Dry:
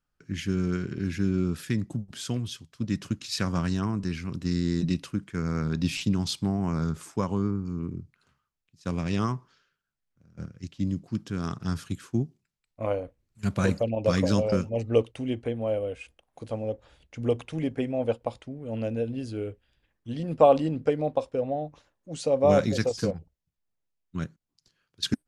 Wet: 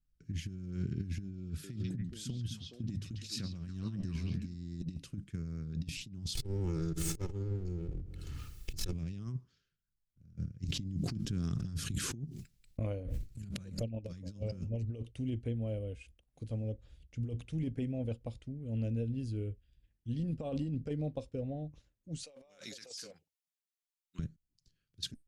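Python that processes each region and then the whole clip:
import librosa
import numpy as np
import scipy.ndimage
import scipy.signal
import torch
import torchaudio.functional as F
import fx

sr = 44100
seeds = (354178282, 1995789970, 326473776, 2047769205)

y = fx.chain(x, sr, fx.hum_notches(base_hz=50, count=3),
    fx.echo_stepped(ms=139, hz=3600.0, octaves=-1.4, feedback_pct=70, wet_db=0), at=(1.22, 4.55))
y = fx.chain(y, sr, fx.lower_of_two(delay_ms=2.3),
    fx.echo_feedback(ms=67, feedback_pct=53, wet_db=-16.5),
    fx.pre_swell(db_per_s=23.0), at=(6.35, 8.93))
y = fx.chain(y, sr, fx.gate_hold(open_db=-50.0, close_db=-57.0, hold_ms=71.0, range_db=-21, attack_ms=1.4, release_ms=100.0),
    fx.low_shelf(hz=130.0, db=-3.5),
    fx.pre_swell(db_per_s=31.0), at=(10.65, 14.12))
y = fx.chain(y, sr, fx.highpass(hz=970.0, slope=12),
    fx.over_compress(threshold_db=-41.0, ratio=-1.0), at=(22.23, 24.19))
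y = fx.tone_stack(y, sr, knobs='10-0-1')
y = fx.over_compress(y, sr, threshold_db=-45.0, ratio=-0.5)
y = F.gain(torch.from_numpy(y), 9.5).numpy()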